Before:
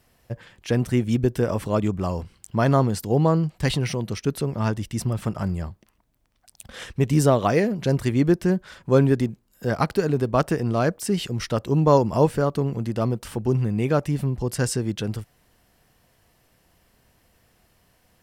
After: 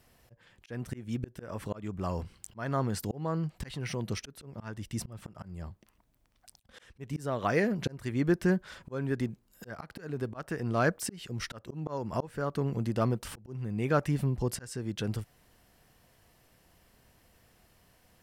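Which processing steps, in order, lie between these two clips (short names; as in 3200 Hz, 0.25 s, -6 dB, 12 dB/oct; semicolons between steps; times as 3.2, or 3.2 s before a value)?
dynamic EQ 1600 Hz, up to +7 dB, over -40 dBFS, Q 1.4; auto swell 0.557 s; in parallel at -2.5 dB: compressor, threshold -32 dBFS, peak gain reduction 16 dB; on the sum: gain -6.5 dB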